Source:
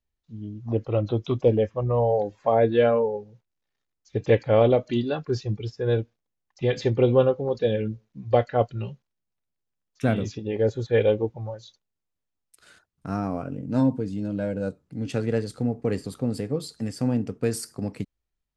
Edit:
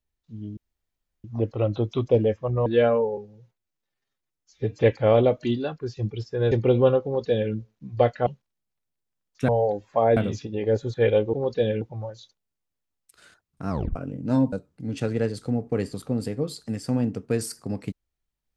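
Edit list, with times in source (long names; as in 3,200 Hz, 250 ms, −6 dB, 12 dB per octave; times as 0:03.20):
0:00.57: splice in room tone 0.67 s
0:01.99–0:02.67: move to 0:10.09
0:03.18–0:04.27: time-stretch 1.5×
0:04.99–0:05.43: fade out, to −8.5 dB
0:05.98–0:06.85: remove
0:07.38–0:07.86: duplicate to 0:11.26
0:08.60–0:08.87: remove
0:13.14: tape stop 0.26 s
0:13.97–0:14.65: remove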